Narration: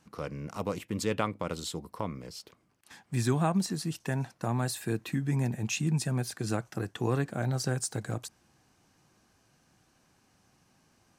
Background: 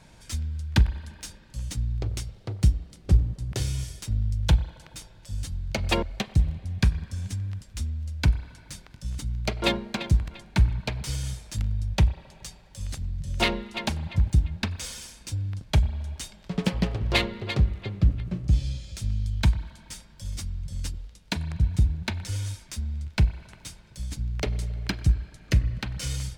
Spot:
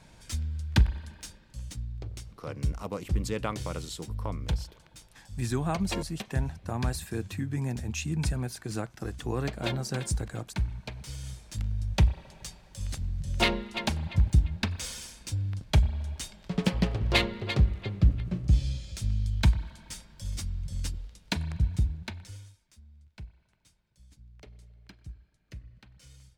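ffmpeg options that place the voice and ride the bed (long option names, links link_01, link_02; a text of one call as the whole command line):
ffmpeg -i stem1.wav -i stem2.wav -filter_complex "[0:a]adelay=2250,volume=-2.5dB[link_01];[1:a]volume=6.5dB,afade=type=out:start_time=0.92:duration=0.99:silence=0.421697,afade=type=in:start_time=11.15:duration=0.98:silence=0.375837,afade=type=out:start_time=21.32:duration=1.21:silence=0.0794328[link_02];[link_01][link_02]amix=inputs=2:normalize=0" out.wav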